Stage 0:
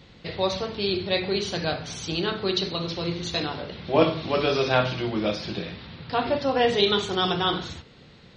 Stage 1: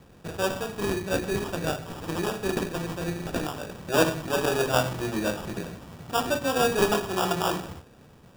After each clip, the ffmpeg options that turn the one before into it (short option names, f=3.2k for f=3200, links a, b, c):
-af "acrusher=samples=21:mix=1:aa=0.000001,volume=-2dB"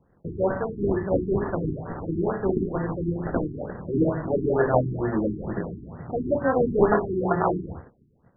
-af "agate=range=-15dB:threshold=-49dB:ratio=16:detection=peak,afftfilt=real='re*lt(b*sr/1024,390*pow(2200/390,0.5+0.5*sin(2*PI*2.2*pts/sr)))':imag='im*lt(b*sr/1024,390*pow(2200/390,0.5+0.5*sin(2*PI*2.2*pts/sr)))':win_size=1024:overlap=0.75,volume=4.5dB"